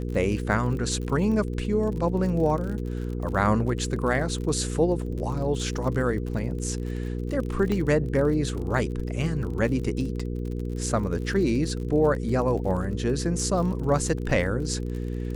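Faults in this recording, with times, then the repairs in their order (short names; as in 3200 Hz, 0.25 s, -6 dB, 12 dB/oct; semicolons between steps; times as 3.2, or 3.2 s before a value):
crackle 38/s -33 dBFS
hum 60 Hz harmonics 8 -30 dBFS
7.72 pop -16 dBFS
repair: de-click; de-hum 60 Hz, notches 8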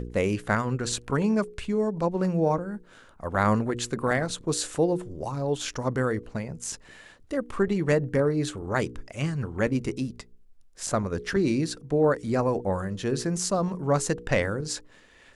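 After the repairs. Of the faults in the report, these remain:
none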